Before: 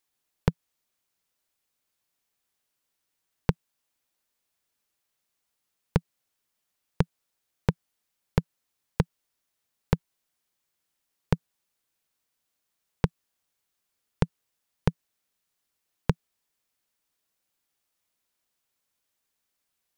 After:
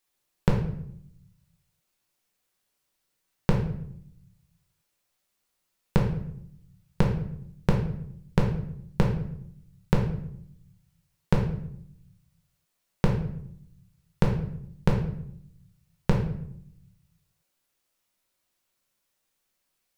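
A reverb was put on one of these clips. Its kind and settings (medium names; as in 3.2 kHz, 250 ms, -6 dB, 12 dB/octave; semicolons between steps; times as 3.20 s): simulated room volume 150 m³, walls mixed, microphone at 1 m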